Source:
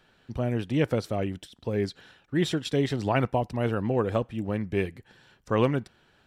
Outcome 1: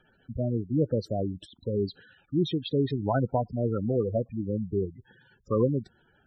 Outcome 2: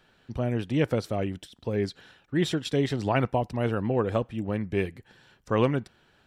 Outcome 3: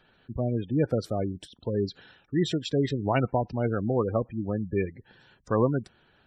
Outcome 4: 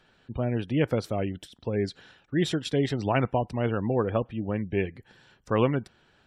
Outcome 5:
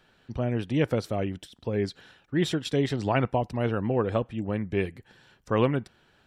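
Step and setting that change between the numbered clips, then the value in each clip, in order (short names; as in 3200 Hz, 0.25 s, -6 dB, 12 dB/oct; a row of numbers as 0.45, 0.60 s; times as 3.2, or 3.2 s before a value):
spectral gate, under each frame's peak: -10, -60, -20, -35, -50 dB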